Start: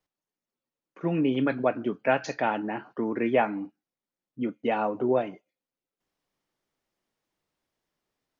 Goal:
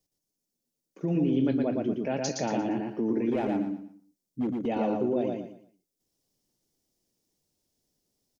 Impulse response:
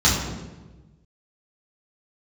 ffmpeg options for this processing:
-filter_complex "[0:a]firequalizer=gain_entry='entry(250,0);entry(1200,-17);entry(5300,4)':delay=0.05:min_phase=1,alimiter=level_in=1dB:limit=-24dB:level=0:latency=1:release=57,volume=-1dB,asettb=1/sr,asplit=3[a][b][c];[a]atrim=end=3.314[d];[b]atrim=start=3.31:end=4.66,asetpts=PTS-STARTPTS,afade=t=in:d=0.004:c=qsin,afade=t=out:st=1.346:d=0.004:c=qsin,volume=28.5dB,asoftclip=hard,volume=-28.5dB[e];[c]atrim=start=4.656[f];[d][e]acrossfade=d=0.004:c1=hsin:c2=qsin[g];[g][f]acrossfade=d=0.004:c1=qsin:c2=hsin,asplit=2[h][i];[i]aecho=0:1:116|232|348|464:0.708|0.212|0.0637|0.0191[j];[h][j]amix=inputs=2:normalize=0,volume=4.5dB"

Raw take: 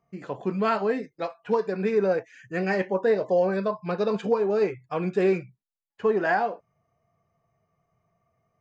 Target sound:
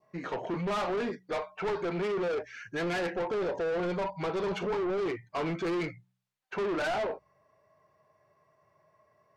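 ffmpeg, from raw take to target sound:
-filter_complex "[0:a]asplit=2[a][b];[b]highpass=f=720:p=1,volume=21dB,asoftclip=type=tanh:threshold=-13dB[c];[a][c]amix=inputs=2:normalize=0,lowpass=f=3.2k:p=1,volume=-6dB,adynamicequalizer=threshold=0.01:dfrequency=1700:dqfactor=1.9:tfrequency=1700:tqfactor=1.9:attack=5:release=100:ratio=0.375:range=3:mode=cutabove:tftype=bell,asoftclip=type=tanh:threshold=-23dB,bandreject=f=67.45:t=h:w=4,bandreject=f=134.9:t=h:w=4,bandreject=f=202.35:t=h:w=4,asetrate=40517,aresample=44100,volume=-5dB"

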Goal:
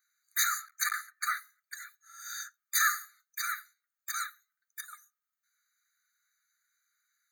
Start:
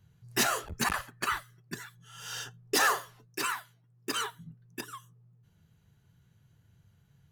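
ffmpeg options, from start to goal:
-af "aexciter=amount=1.8:drive=4.6:freq=5.9k,afftfilt=real='re*eq(mod(floor(b*sr/1024/1200),2),1)':imag='im*eq(mod(floor(b*sr/1024/1200),2),1)':win_size=1024:overlap=0.75"

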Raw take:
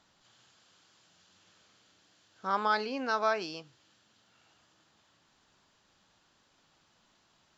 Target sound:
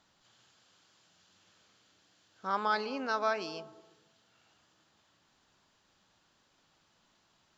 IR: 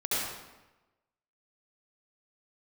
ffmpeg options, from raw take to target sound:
-filter_complex "[0:a]asplit=2[a][b];[1:a]atrim=start_sample=2205,lowpass=f=1.1k:w=0.5412,lowpass=f=1.1k:w=1.3066,adelay=112[c];[b][c]afir=irnorm=-1:irlink=0,volume=-23.5dB[d];[a][d]amix=inputs=2:normalize=0,volume=-2dB"

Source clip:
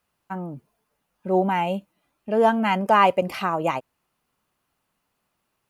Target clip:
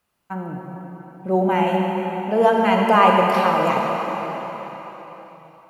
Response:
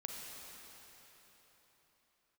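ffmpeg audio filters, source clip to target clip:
-filter_complex "[1:a]atrim=start_sample=2205[a];[0:a][a]afir=irnorm=-1:irlink=0,volume=5.5dB"

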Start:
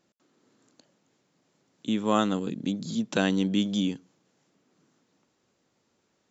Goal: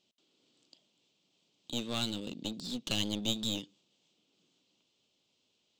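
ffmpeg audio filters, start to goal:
-af "asetrate=48000,aresample=44100,lowpass=5.1k,highshelf=f=2.3k:t=q:w=3:g=10,aeval=exprs='clip(val(0),-1,0.0355)':c=same,volume=-9dB"

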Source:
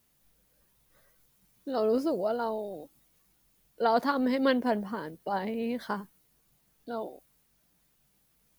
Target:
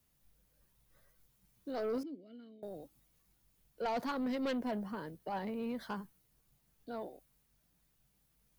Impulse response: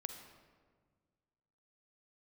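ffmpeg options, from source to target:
-filter_complex "[0:a]acrossover=split=140|1700[a][b][c];[a]acontrast=86[d];[d][b][c]amix=inputs=3:normalize=0,asettb=1/sr,asplit=3[e][f][g];[e]atrim=end=2.034[h];[f]atrim=start=2.03:end=2.63,asetpts=PTS-STARTPTS,afade=t=in:d=0.004:c=qsin,afade=t=out:st=0.596:d=0.004:c=qsin,asplit=3[i][j][k];[i]bandpass=f=270:t=q:w=8,volume=0dB[l];[j]bandpass=f=2.29k:t=q:w=8,volume=-6dB[m];[k]bandpass=f=3.01k:t=q:w=8,volume=-9dB[n];[l][m][n]amix=inputs=3:normalize=0[o];[g]atrim=start=2.626[p];[h][o]acrossfade=d=0.004:c1=hsin:c2=qsin[q];[q][p]acrossfade=d=0.004:c1=qsin:c2=hsin,asoftclip=type=tanh:threshold=-24.5dB,volume=-6dB"

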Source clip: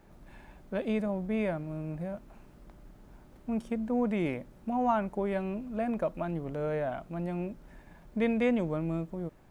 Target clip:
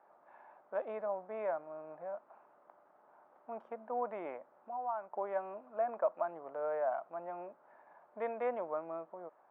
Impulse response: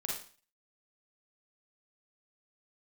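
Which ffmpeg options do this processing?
-filter_complex "[0:a]asettb=1/sr,asplit=3[a][b][c];[a]atrim=end=4.364[d];[b]atrim=start=4.36:end=5.13,asetpts=PTS-STARTPTS,afade=t=in:d=0.004:c=qsin,afade=t=out:st=0.766:d=0.004:c=qsin,acompressor=threshold=-38dB:ratio=3[e];[c]atrim=start=5.126[f];[d][e]acrossfade=d=0.004:c1=hsin:c2=qsin[g];[g][f]acrossfade=d=0.004:c1=qsin:c2=hsin,asuperpass=centerf=900:order=4:qfactor=1.2,volume=2dB"

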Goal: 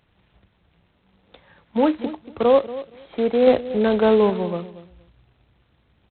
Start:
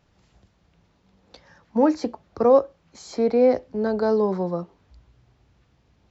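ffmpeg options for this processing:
-filter_complex "[0:a]asettb=1/sr,asplit=3[a][b][c];[a]atrim=end=3.474[d];[b]atrim=start=3.47:end=4.3,asetpts=PTS-STARTPTS,afade=t=in:d=0.004:c=qsin,afade=t=out:st=0.826:d=0.004:c=qsin,acontrast=25[e];[c]atrim=start=4.296[f];[d][e]acrossfade=d=0.004:c1=hsin:c2=qsin[g];[g][f]acrossfade=d=0.004:c1=qsin:c2=hsin,asplit=2[h][i];[i]adelay=234,lowpass=f=800:p=1,volume=-14dB,asplit=2[j][k];[k]adelay=234,lowpass=f=800:p=1,volume=0.21[l];[h][j][l]amix=inputs=3:normalize=0" -ar 8000 -c:a adpcm_g726 -b:a 16k

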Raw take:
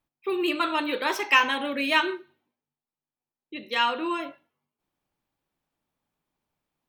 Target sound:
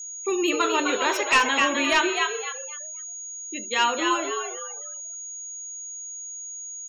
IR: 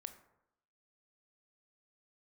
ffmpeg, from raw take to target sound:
-filter_complex "[0:a]asplit=5[a][b][c][d][e];[b]adelay=256,afreqshift=81,volume=-5dB[f];[c]adelay=512,afreqshift=162,volume=-14.6dB[g];[d]adelay=768,afreqshift=243,volume=-24.3dB[h];[e]adelay=1024,afreqshift=324,volume=-33.9dB[i];[a][f][g][h][i]amix=inputs=5:normalize=0,volume=15dB,asoftclip=hard,volume=-15dB,aeval=exprs='val(0)+0.0158*sin(2*PI*6700*n/s)':c=same,afftfilt=real='re*gte(hypot(re,im),0.00891)':imag='im*gte(hypot(re,im),0.00891)':win_size=1024:overlap=0.75,volume=2dB"

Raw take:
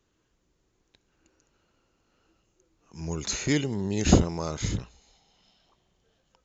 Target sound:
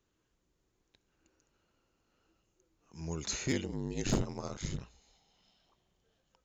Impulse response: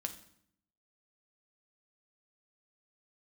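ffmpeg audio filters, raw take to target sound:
-filter_complex "[0:a]asettb=1/sr,asplit=3[a][b][c];[a]atrim=end=3.514[d];[b]atrim=start=3.51:end=4.81,asetpts=PTS-STARTPTS,afade=t=in:d=0.004:c=qsin,afade=t=out:st=1.296:d=0.004:c=qsin,aeval=exprs='val(0)*sin(2*PI*48*n/s)':c=same[e];[c]atrim=start=4.806[f];[d][e]acrossfade=d=0.004:c1=hsin:c2=qsin[g];[g][f]acrossfade=d=0.004:c1=qsin:c2=hsin,asoftclip=type=hard:threshold=-16dB,volume=-6dB"

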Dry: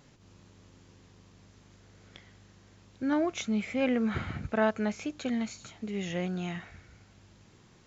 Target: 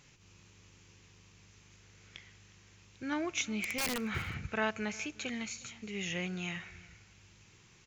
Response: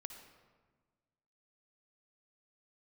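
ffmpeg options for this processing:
-filter_complex "[0:a]equalizer=f=250:t=o:w=0.67:g=-7,equalizer=f=630:t=o:w=0.67:g=-7,equalizer=f=2.5k:t=o:w=0.67:g=9,equalizer=f=6.3k:t=o:w=0.67:g=7,asettb=1/sr,asplit=3[a][b][c];[a]atrim=end=3.524[d];[b]atrim=start=3.52:end=4,asetpts=PTS-STARTPTS,afade=t=in:d=0.004:c=qsin,afade=t=out:st=0.476:d=0.004:c=qsin,aeval=exprs='(mod(15*val(0)+1,2)-1)/15':c=same[e];[c]atrim=start=3.996[f];[d][e]acrossfade=d=0.004:c1=hsin:c2=qsin[g];[g][f]acrossfade=d=0.004:c1=qsin:c2=hsin,aecho=1:1:361:0.075,asplit=2[h][i];[1:a]atrim=start_sample=2205[j];[i][j]afir=irnorm=-1:irlink=0,volume=-13dB[k];[h][k]amix=inputs=2:normalize=0,volume=-4dB"

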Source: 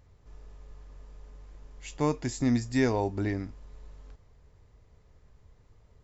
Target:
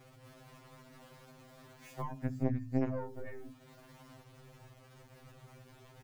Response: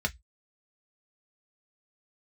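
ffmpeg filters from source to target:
-filter_complex "[0:a]highpass=81,aecho=1:1:63|126:0.141|0.0325,asplit=2[a][b];[1:a]atrim=start_sample=2205,lowshelf=f=400:g=9[c];[b][c]afir=irnorm=-1:irlink=0,volume=-4.5dB[d];[a][d]amix=inputs=2:normalize=0,aeval=exprs='0.668*(cos(1*acos(clip(val(0)/0.668,-1,1)))-cos(1*PI/2))+0.133*(cos(2*acos(clip(val(0)/0.668,-1,1)))-cos(2*PI/2))+0.168*(cos(3*acos(clip(val(0)/0.668,-1,1)))-cos(3*PI/2))':c=same,lowpass=f=2.1k:p=1,acrusher=bits=9:mix=0:aa=0.000001,acompressor=threshold=-42dB:ratio=4,bandreject=f=129.4:t=h:w=4,bandreject=f=258.8:t=h:w=4,afftfilt=real='re*2.45*eq(mod(b,6),0)':imag='im*2.45*eq(mod(b,6),0)':win_size=2048:overlap=0.75,volume=7.5dB"

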